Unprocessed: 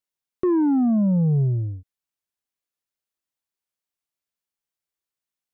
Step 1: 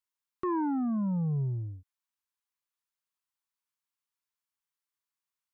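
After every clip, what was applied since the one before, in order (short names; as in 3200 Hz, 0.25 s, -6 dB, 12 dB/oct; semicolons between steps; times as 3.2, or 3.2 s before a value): resonant low shelf 790 Hz -6.5 dB, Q 3; gain -3.5 dB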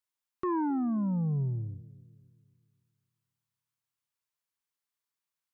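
analogue delay 0.264 s, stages 1024, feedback 43%, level -18 dB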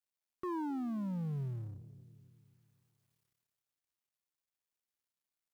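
G.711 law mismatch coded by mu; gain -9 dB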